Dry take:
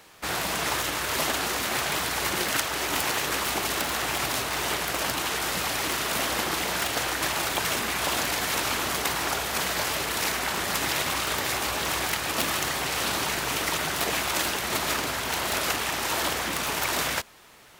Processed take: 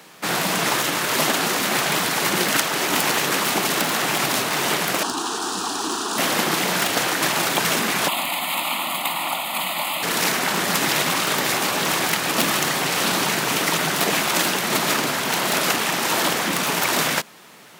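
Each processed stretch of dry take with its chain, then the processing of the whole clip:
0:05.03–0:06.18: Savitzky-Golay smoothing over 9 samples + phaser with its sweep stopped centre 570 Hz, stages 6
0:08.08–0:10.03: high-pass filter 280 Hz + phaser with its sweep stopped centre 1,600 Hz, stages 6
whole clip: Chebyshev high-pass filter 170 Hz, order 3; low-shelf EQ 210 Hz +10 dB; level +6 dB

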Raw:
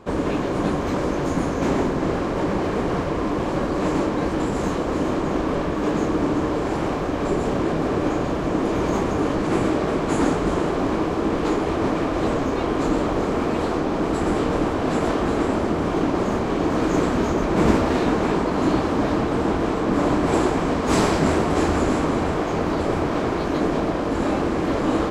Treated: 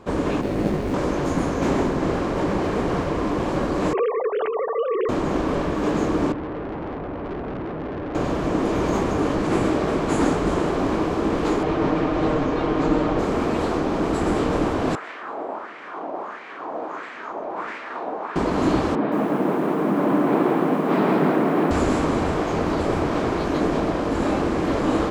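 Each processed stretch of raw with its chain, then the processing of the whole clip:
0:00.41–0:00.94: running median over 41 samples + double-tracking delay 19 ms −4.5 dB
0:03.93–0:05.09: three sine waves on the formant tracks + mains-hum notches 50/100/150/200/250/300/350/400 Hz
0:06.32–0:08.15: low-pass filter 1,100 Hz + tube saturation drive 27 dB, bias 0.5
0:11.63–0:13.19: Bessel low-pass filter 4,000 Hz + comb filter 6.5 ms, depth 38%
0:14.95–0:18.36: high-pass filter 42 Hz + parametric band 98 Hz −11 dB 1.3 octaves + auto-filter band-pass sine 1.5 Hz 670–2,100 Hz
0:18.95–0:21.71: Butterworth high-pass 150 Hz + high-frequency loss of the air 460 metres + feedback echo at a low word length 169 ms, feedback 35%, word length 8 bits, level −3 dB
whole clip: no processing

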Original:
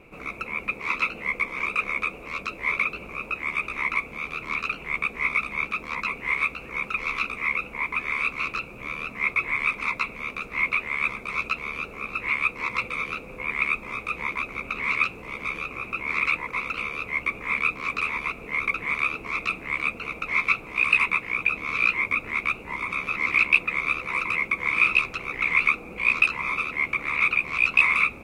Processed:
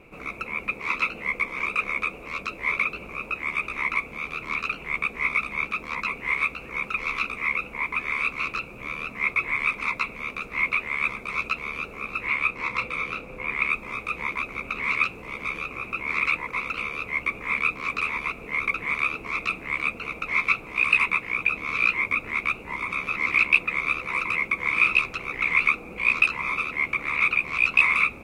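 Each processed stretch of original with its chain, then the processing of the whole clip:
0:12.27–0:13.70: high-shelf EQ 6,400 Hz −5 dB + double-tracking delay 31 ms −10 dB
whole clip: no processing

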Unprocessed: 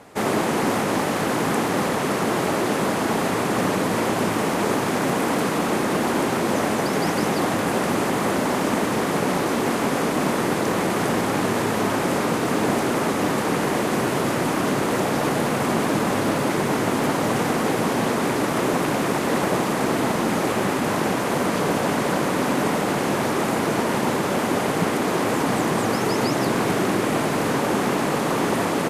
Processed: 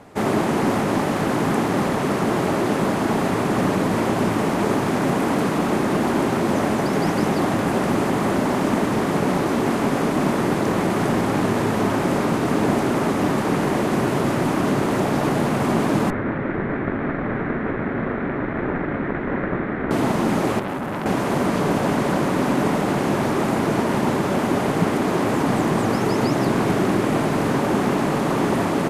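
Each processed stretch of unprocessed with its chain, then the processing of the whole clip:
0:16.10–0:19.91: lower of the sound and its delayed copy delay 0.52 ms + low-pass filter 2,100 Hz 24 dB per octave + low-shelf EQ 350 Hz −5.5 dB
0:20.59–0:21.06: parametric band 5,300 Hz −8 dB 2.2 octaves + saturating transformer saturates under 1,800 Hz
whole clip: spectral tilt −1.5 dB per octave; notch filter 490 Hz, Q 14

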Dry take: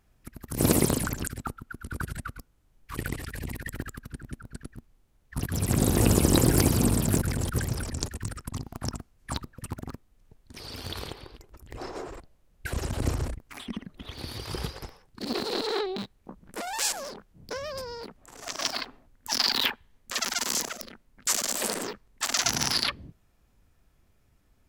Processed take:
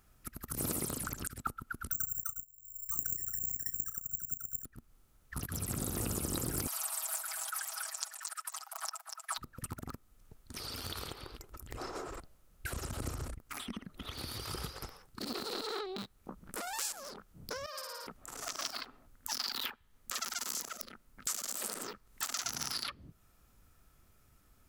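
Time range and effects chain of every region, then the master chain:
0:01.91–0:04.65: spectral envelope exaggerated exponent 2 + double-tracking delay 34 ms −12.5 dB + bad sample-rate conversion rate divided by 6×, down filtered, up zero stuff
0:06.67–0:09.38: Butterworth high-pass 660 Hz 72 dB per octave + comb filter 6.2 ms, depth 85% + single-tap delay 241 ms −10 dB
0:17.66–0:18.07: high-pass filter 710 Hz + downward expander −36 dBFS + flutter between parallel walls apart 9.7 metres, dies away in 1.4 s
0:21.79–0:22.25: wrap-around overflow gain 12 dB + one half of a high-frequency compander encoder only
whole clip: high-shelf EQ 6,200 Hz +10.5 dB; downward compressor 2.5 to 1, threshold −40 dBFS; parametric band 1,300 Hz +9 dB 0.29 octaves; level −1 dB

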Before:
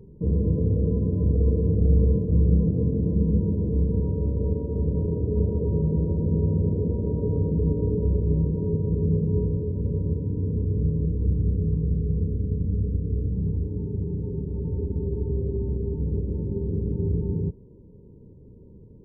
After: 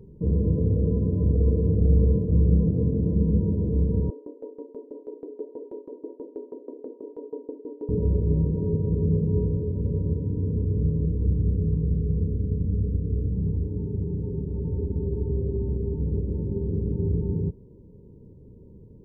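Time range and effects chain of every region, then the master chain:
0:04.10–0:07.89: Butterworth high-pass 260 Hz 96 dB per octave + tremolo with a ramp in dB decaying 6.2 Hz, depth 20 dB
whole clip: no processing

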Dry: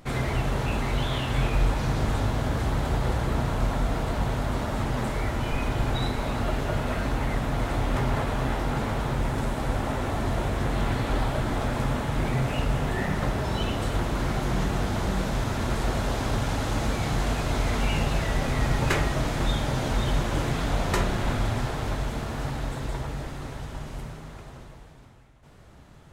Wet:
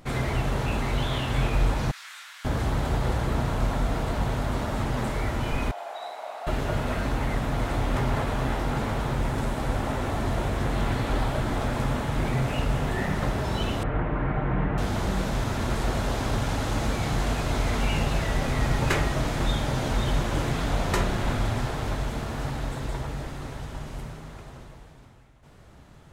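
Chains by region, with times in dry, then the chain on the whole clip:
0:01.91–0:02.45: high-pass filter 1,500 Hz 24 dB per octave + micro pitch shift up and down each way 31 cents
0:05.71–0:06.47: four-pole ladder high-pass 630 Hz, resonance 70% + flutter between parallel walls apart 10.2 metres, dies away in 0.53 s
0:13.83–0:14.78: inverse Chebyshev low-pass filter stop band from 7,100 Hz, stop band 60 dB + comb filter 6.6 ms, depth 36%
whole clip: no processing

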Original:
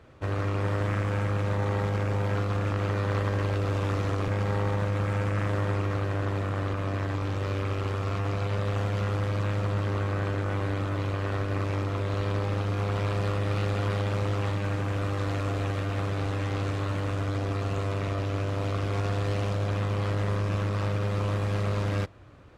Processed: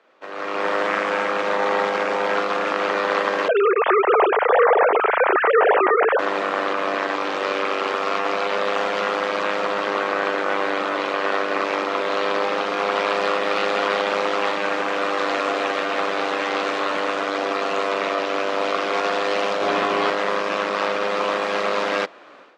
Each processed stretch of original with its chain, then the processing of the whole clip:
0:03.48–0:06.19: three sine waves on the formant tracks + high-shelf EQ 3,000 Hz −11 dB
0:19.61–0:20.10: low-shelf EQ 320 Hz +7.5 dB + double-tracking delay 17 ms −4.5 dB
whole clip: three-way crossover with the lows and the highs turned down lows −16 dB, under 430 Hz, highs −18 dB, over 6,300 Hz; automatic gain control gain up to 14 dB; Butterworth high-pass 190 Hz 36 dB per octave

